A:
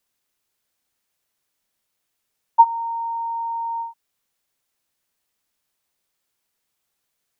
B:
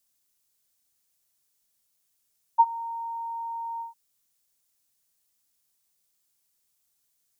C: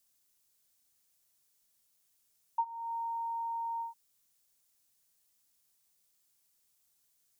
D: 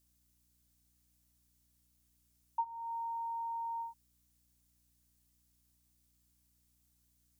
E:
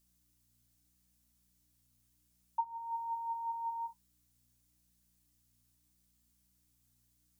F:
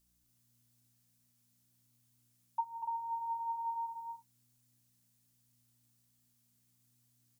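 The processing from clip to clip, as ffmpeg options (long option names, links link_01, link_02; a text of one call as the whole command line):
ffmpeg -i in.wav -af "bass=frequency=250:gain=5,treble=frequency=4000:gain=12,volume=-7.5dB" out.wav
ffmpeg -i in.wav -af "acompressor=threshold=-35dB:ratio=3" out.wav
ffmpeg -i in.wav -af "aeval=exprs='val(0)+0.000224*(sin(2*PI*60*n/s)+sin(2*PI*2*60*n/s)/2+sin(2*PI*3*60*n/s)/3+sin(2*PI*4*60*n/s)/4+sin(2*PI*5*60*n/s)/5)':channel_layout=same,volume=-2.5dB" out.wav
ffmpeg -i in.wav -af "flanger=delay=5:depth=7.4:regen=55:speed=0.4:shape=triangular,volume=4.5dB" out.wav
ffmpeg -i in.wav -af "aecho=1:1:242|291.5:0.562|0.447,volume=-1dB" out.wav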